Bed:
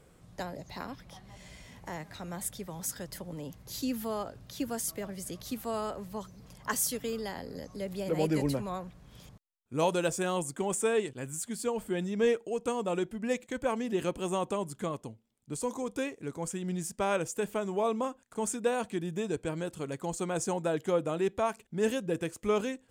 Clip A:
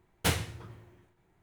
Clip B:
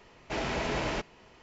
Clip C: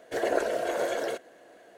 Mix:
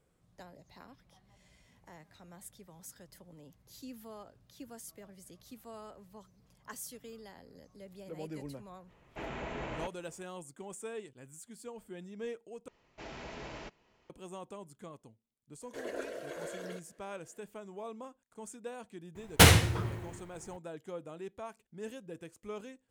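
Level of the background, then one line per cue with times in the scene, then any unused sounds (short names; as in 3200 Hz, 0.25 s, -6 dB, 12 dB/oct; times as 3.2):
bed -14 dB
8.86 add B -8 dB, fades 0.05 s + bell 5100 Hz -15 dB
12.68 replace with B -13.5 dB
15.62 add C -11.5 dB + bell 780 Hz -12.5 dB 0.33 oct
19.15 add A -5.5 dB + maximiser +18.5 dB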